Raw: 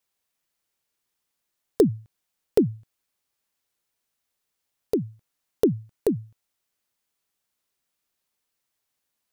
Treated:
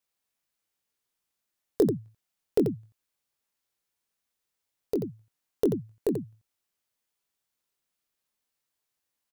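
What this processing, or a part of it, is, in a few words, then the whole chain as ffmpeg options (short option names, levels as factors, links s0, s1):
slapback doubling: -filter_complex "[0:a]asplit=3[s0][s1][s2];[s1]adelay=22,volume=0.447[s3];[s2]adelay=87,volume=0.447[s4];[s0][s3][s4]amix=inputs=3:normalize=0,volume=0.562"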